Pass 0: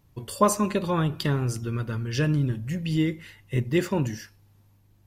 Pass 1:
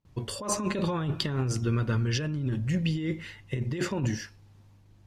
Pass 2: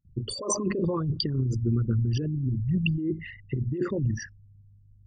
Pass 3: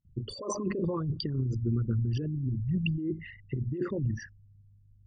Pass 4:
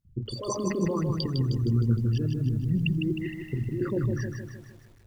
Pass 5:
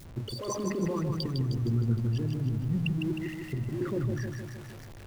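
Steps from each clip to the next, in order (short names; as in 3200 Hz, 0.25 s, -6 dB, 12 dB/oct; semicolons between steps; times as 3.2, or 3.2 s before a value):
gate with hold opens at -52 dBFS; LPF 7300 Hz 12 dB/oct; negative-ratio compressor -28 dBFS, ratio -1
formant sharpening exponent 3; gain +2 dB
air absorption 110 m; gain -3.5 dB
lo-fi delay 0.155 s, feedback 55%, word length 10-bit, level -5 dB; gain +2.5 dB
zero-crossing step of -37.5 dBFS; gain -4 dB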